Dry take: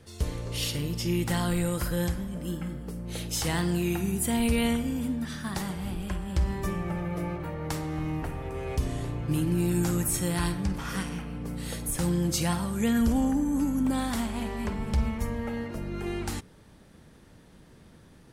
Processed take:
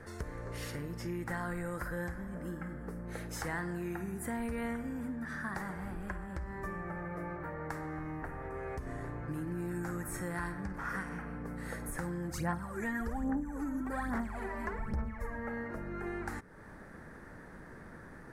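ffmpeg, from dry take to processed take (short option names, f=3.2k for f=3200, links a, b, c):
-filter_complex "[0:a]asplit=3[a][b][c];[a]afade=t=out:st=12.29:d=0.02[d];[b]aphaser=in_gain=1:out_gain=1:delay=3.3:decay=0.69:speed=1.2:type=sinusoidal,afade=t=in:st=12.29:d=0.02,afade=t=out:st=15.36:d=0.02[e];[c]afade=t=in:st=15.36:d=0.02[f];[d][e][f]amix=inputs=3:normalize=0,asplit=3[g][h][i];[g]atrim=end=6.262[j];[h]atrim=start=6.258:end=8.872,asetpts=PTS-STARTPTS,volume=-3dB[k];[i]atrim=start=8.868[l];[j][k]acrossfade=d=0.004:c1=hsin:c2=hsin[m];[m][l]acrossfade=d=0.004:c1=hsin:c2=hsin,highshelf=f=2.3k:t=q:w=3:g=-10,acompressor=threshold=-45dB:ratio=2.5,equalizer=f=97:w=0.43:g=-6,volume=6dB"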